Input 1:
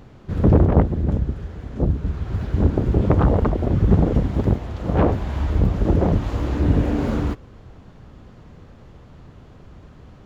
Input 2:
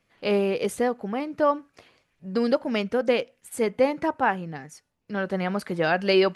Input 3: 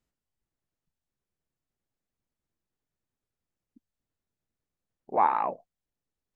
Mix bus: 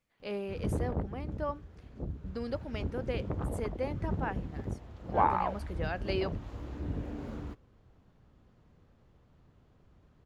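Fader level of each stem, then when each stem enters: −18.5, −14.0, −3.5 decibels; 0.20, 0.00, 0.00 seconds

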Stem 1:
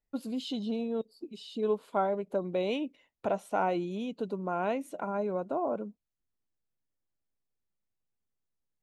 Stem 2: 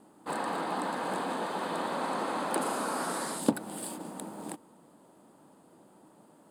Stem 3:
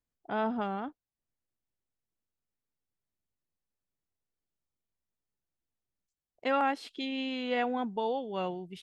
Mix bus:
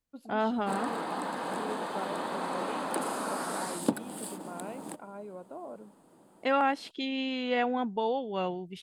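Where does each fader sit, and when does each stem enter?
−11.5, −1.5, +2.0 decibels; 0.00, 0.40, 0.00 seconds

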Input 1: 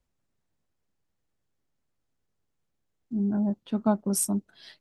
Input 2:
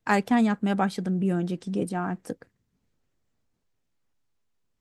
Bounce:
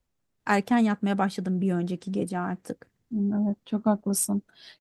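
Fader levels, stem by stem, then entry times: +0.5, −0.5 decibels; 0.00, 0.40 seconds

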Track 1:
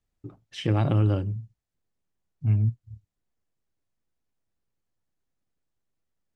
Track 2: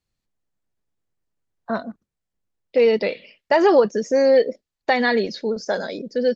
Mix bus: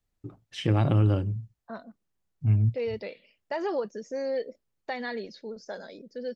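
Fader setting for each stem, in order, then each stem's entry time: 0.0, −15.0 decibels; 0.00, 0.00 seconds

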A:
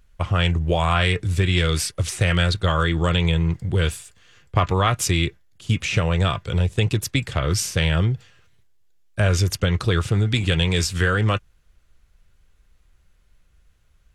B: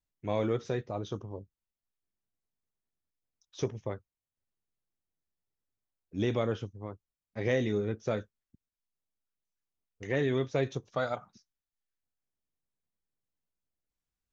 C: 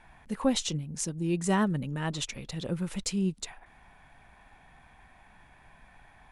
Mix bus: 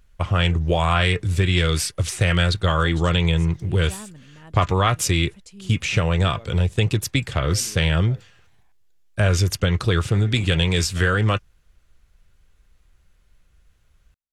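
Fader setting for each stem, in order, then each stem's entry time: +0.5, −14.5, −13.5 decibels; 0.00, 0.00, 2.40 seconds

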